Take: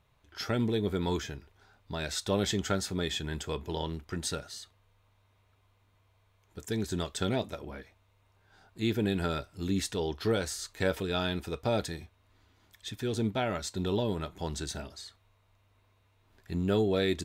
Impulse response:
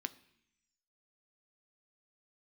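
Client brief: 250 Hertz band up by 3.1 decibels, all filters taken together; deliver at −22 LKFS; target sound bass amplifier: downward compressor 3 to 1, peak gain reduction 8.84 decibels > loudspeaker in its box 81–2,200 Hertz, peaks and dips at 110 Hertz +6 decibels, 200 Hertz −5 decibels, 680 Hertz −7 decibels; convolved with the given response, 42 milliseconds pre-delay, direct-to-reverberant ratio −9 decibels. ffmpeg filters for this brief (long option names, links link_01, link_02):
-filter_complex "[0:a]equalizer=frequency=250:width_type=o:gain=6.5,asplit=2[link_01][link_02];[1:a]atrim=start_sample=2205,adelay=42[link_03];[link_02][link_03]afir=irnorm=-1:irlink=0,volume=10dB[link_04];[link_01][link_04]amix=inputs=2:normalize=0,acompressor=threshold=-21dB:ratio=3,highpass=frequency=81:width=0.5412,highpass=frequency=81:width=1.3066,equalizer=frequency=110:width_type=q:width=4:gain=6,equalizer=frequency=200:width_type=q:width=4:gain=-5,equalizer=frequency=680:width_type=q:width=4:gain=-7,lowpass=frequency=2200:width=0.5412,lowpass=frequency=2200:width=1.3066,volume=6dB"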